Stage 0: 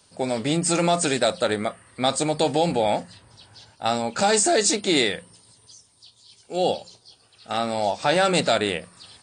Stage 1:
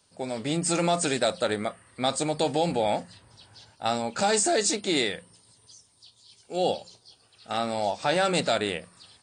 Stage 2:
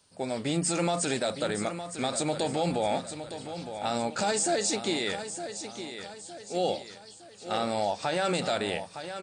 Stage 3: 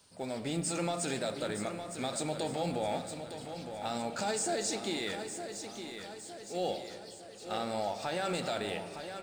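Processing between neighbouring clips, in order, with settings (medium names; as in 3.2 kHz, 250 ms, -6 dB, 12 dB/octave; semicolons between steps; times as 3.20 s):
level rider gain up to 4.5 dB; trim -7.5 dB
peak limiter -18.5 dBFS, peak gain reduction 8 dB; feedback delay 912 ms, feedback 44%, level -10 dB
companding laws mixed up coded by mu; on a send at -10 dB: reverberation RT60 2.5 s, pre-delay 4 ms; on the sum: trim -7 dB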